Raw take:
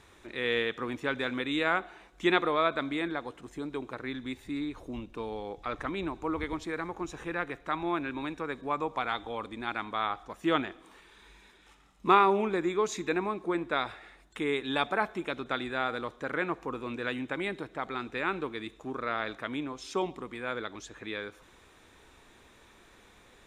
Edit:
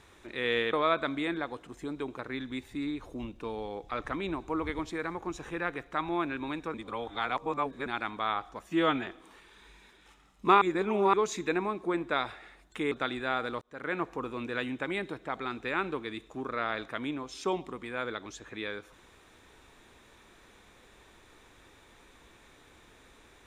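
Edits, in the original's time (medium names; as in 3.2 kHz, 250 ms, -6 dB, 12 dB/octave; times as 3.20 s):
0.73–2.47 s: delete
8.48–9.60 s: reverse
10.40–10.67 s: stretch 1.5×
12.22–12.74 s: reverse
14.52–15.41 s: delete
16.11–16.49 s: fade in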